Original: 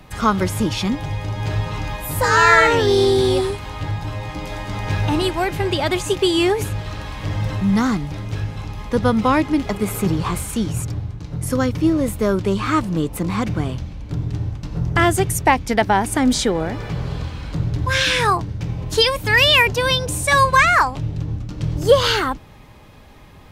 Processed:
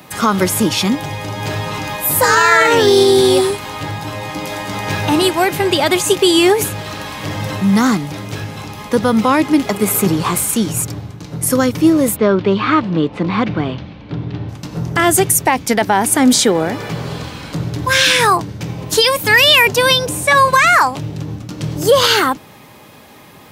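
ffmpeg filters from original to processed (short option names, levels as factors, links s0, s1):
-filter_complex "[0:a]asettb=1/sr,asplit=3[s0][s1][s2];[s0]atrim=end=12.164[s3];[s1]atrim=start=12.16:end=14.49,asetpts=PTS-STARTPTS,afade=t=in:d=0.004:c=qsin,afade=t=out:st=2.326:d=0.004:c=qsin,lowpass=f=3900:w=0.5412,lowpass=f=3900:w=1.3066[s4];[s2]atrim=start=14.486[s5];[s3][s4]acrossfade=d=0.004:c1=hsin:c2=qsin[s6];[s6][s5]acrossfade=d=0.004:c1=qsin:c2=hsin,asettb=1/sr,asplit=3[s7][s8][s9];[s7]atrim=end=20.064[s10];[s8]atrim=start=20.06:end=20.48,asetpts=PTS-STARTPTS,afade=t=in:d=0.004:c=qsin,afade=t=out:st=0.416:d=0.004:c=qsin,acrossover=split=3300[s11][s12];[s12]acompressor=threshold=0.02:ratio=4:attack=1:release=60[s13];[s11][s13]amix=inputs=2:normalize=0[s14];[s9]atrim=start=20.476[s15];[s10][s14]acrossfade=d=0.004:c1=hsin:c2=qsin[s16];[s16][s15]acrossfade=d=0.004:c1=qsin:c2=hsin,highpass=170,highshelf=f=8800:g=11.5,alimiter=level_in=2.37:limit=0.891:release=50:level=0:latency=1,volume=0.891"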